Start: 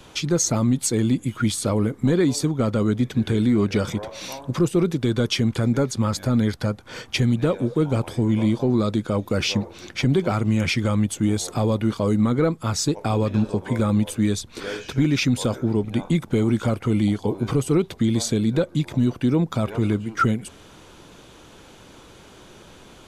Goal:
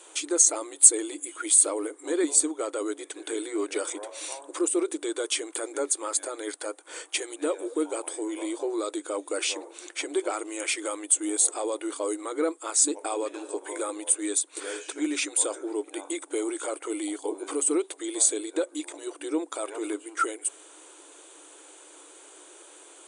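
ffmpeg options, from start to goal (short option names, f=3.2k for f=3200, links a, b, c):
-af "aexciter=amount=14.8:drive=3.5:freq=7.7k,afftfilt=real='re*between(b*sr/4096,290,9900)':imag='im*between(b*sr/4096,290,9900)':win_size=4096:overlap=0.75,volume=-5dB"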